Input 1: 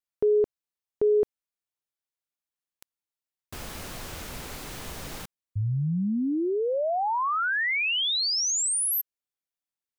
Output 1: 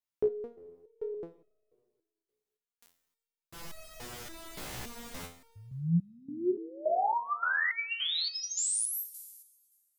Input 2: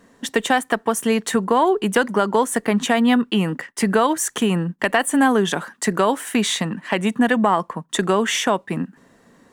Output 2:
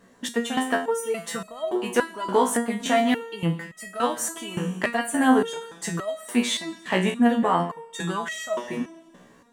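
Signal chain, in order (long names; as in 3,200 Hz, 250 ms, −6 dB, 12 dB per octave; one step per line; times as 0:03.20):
four-comb reverb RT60 1.6 s, combs from 27 ms, DRR 13.5 dB
step-sequenced resonator 3.5 Hz 62–640 Hz
level +5.5 dB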